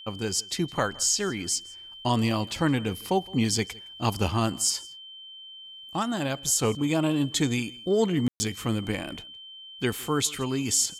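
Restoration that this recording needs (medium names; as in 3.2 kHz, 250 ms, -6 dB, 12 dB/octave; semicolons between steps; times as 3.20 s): band-stop 3.1 kHz, Q 30; room tone fill 8.28–8.40 s; inverse comb 164 ms -23.5 dB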